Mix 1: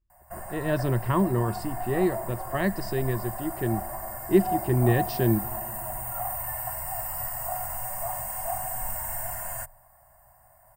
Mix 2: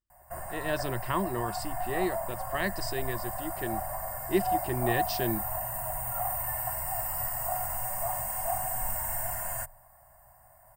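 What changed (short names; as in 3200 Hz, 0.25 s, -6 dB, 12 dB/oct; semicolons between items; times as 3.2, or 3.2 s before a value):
speech: add tilt +3 dB/oct; reverb: off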